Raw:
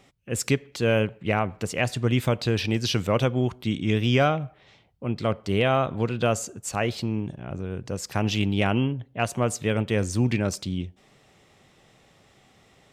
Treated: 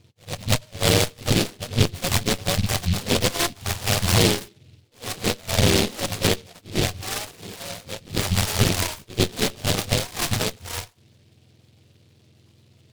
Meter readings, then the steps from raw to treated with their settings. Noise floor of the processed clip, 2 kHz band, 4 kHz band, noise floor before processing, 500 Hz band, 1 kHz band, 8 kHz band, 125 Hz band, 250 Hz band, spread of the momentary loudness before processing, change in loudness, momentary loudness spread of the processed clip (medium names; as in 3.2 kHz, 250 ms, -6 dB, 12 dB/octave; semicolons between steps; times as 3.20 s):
-58 dBFS, +2.5 dB, +9.0 dB, -59 dBFS, -1.0 dB, -0.5 dB, +9.5 dB, +1.0 dB, -1.0 dB, 10 LU, +2.5 dB, 14 LU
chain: spectrum inverted on a logarithmic axis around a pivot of 510 Hz; in parallel at -11 dB: sample-and-hold 23×; on the sum: Chebyshev shaper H 6 -11 dB, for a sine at -6.5 dBFS; low-pass 1.6 kHz 24 dB/octave; pre-echo 97 ms -21 dB; delay time shaken by noise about 3.3 kHz, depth 0.24 ms